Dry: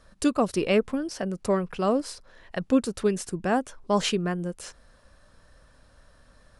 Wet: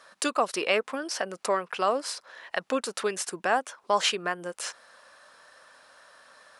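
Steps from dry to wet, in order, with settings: HPF 890 Hz 12 dB/oct; tilt -1.5 dB/oct; in parallel at +3 dB: compressor, threshold -39 dBFS, peak gain reduction 15 dB; on the sum: gain +3 dB

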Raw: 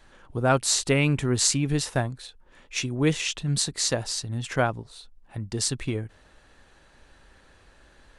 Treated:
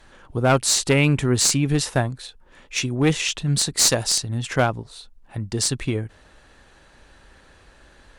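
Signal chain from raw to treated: 3.77–4.18 high shelf 3800 Hz +8.5 dB; one-sided clip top -19 dBFS; gain +4.5 dB

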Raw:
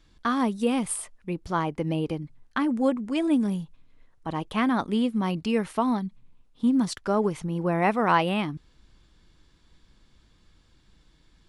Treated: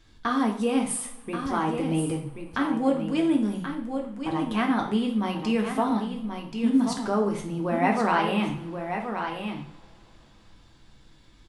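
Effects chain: flange 1.5 Hz, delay 8.8 ms, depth 7.4 ms, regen +74%; echo 1.08 s -9 dB; in parallel at +1 dB: compressor, threshold -40 dBFS, peak gain reduction 18.5 dB; on the sum: reverb, pre-delay 3 ms, DRR 1 dB

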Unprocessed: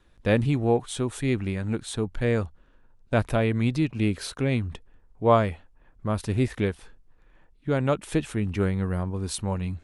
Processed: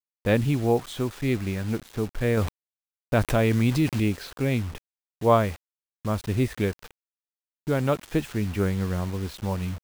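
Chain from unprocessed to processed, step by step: low-pass opened by the level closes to 540 Hz, open at -20.5 dBFS; bit-crush 7-bit; 2.37–4 fast leveller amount 50%

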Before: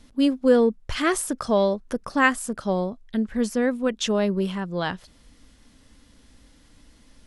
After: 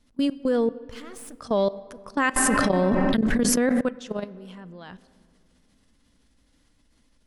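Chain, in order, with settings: 0.77–1.36 half-wave gain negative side -12 dB; level quantiser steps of 21 dB; vibrato 6.1 Hz 13 cents; on a send at -17 dB: reverb RT60 2.4 s, pre-delay 3 ms; 2.36–3.81 on the sum: fast leveller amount 100%

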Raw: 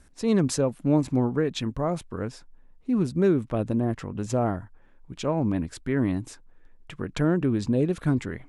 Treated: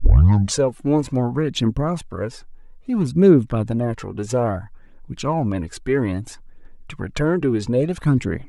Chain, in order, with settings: tape start at the beginning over 0.59 s; phaser 0.6 Hz, delay 2.8 ms, feedback 50%; gain +4.5 dB

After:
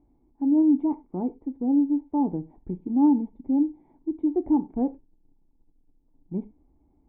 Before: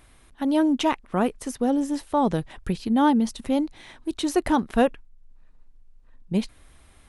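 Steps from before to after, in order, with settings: in parallel at -6.5 dB: companded quantiser 4-bit; on the sum: vocal tract filter u; non-linear reverb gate 0.13 s falling, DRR 10.5 dB

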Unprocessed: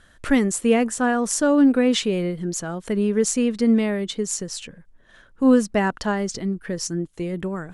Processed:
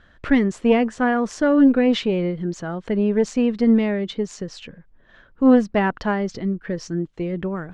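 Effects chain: air absorption 200 m; added harmonics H 2 -13 dB, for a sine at -6.5 dBFS; gain +2 dB

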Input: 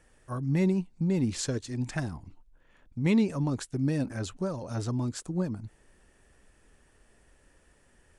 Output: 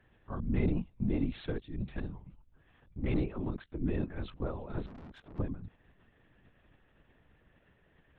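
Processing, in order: 1.61–2.16 bell 1200 Hz -10 dB 1.9 oct; 2.98–3.84 ring modulator 74 Hz; LPC vocoder at 8 kHz whisper; 4.86–5.39 tube stage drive 43 dB, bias 0.3; gain -4 dB

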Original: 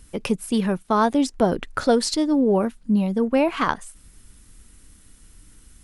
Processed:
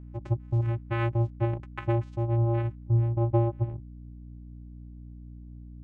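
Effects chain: low-pass sweep 1600 Hz -> 180 Hz, 2.67–3.98; vocoder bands 4, square 116 Hz; hum 60 Hz, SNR 15 dB; gain -6.5 dB

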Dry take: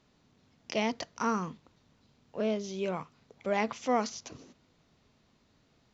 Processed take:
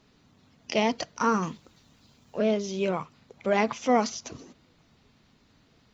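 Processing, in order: bin magnitudes rounded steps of 15 dB; 1.42–2.38 high shelf 3200 Hz -> 4300 Hz +9.5 dB; gain +6 dB

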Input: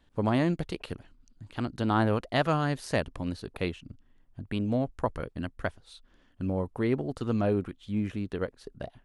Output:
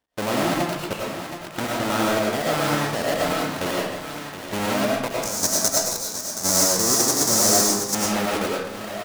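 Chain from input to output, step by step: half-waves squared off; HPF 480 Hz 6 dB/oct; feedback echo 0.723 s, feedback 45%, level -10 dB; sample leveller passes 3; level quantiser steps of 11 dB; 5.22–7.95 resonant high shelf 4200 Hz +13.5 dB, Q 3; reverb RT60 0.75 s, pre-delay 60 ms, DRR -3.5 dB; gain -4 dB

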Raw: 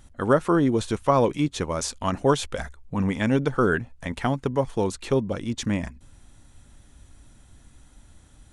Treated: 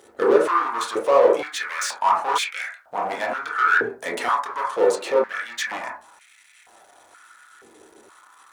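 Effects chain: 3.94–4.45 tilt +2.5 dB/oct; limiter -15 dBFS, peak gain reduction 8 dB; sample leveller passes 3; requantised 12-bit, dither triangular; reverb RT60 0.35 s, pre-delay 17 ms, DRR -3 dB; stepped high-pass 2.1 Hz 430–2200 Hz; gain -7 dB

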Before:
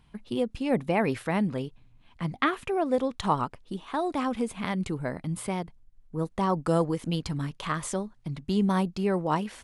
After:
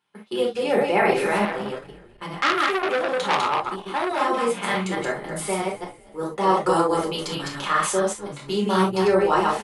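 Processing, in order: reverse delay 0.127 s, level -2 dB; gate -41 dBFS, range -14 dB; HPF 410 Hz 12 dB/oct; frequency-shifting echo 0.246 s, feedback 40%, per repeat -78 Hz, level -19 dB; reverb, pre-delay 5 ms, DRR -2.5 dB; 1.45–4.2 core saturation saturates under 2900 Hz; gain +2.5 dB

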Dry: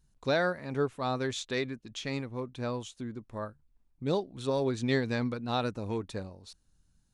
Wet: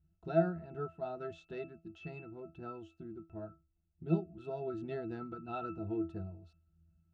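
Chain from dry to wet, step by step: octave resonator E, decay 0.22 s; gain +10 dB

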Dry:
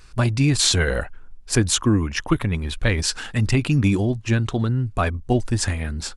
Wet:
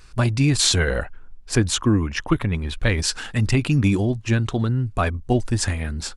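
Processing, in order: 0.8–2.82 high shelf 7100 Hz -7.5 dB

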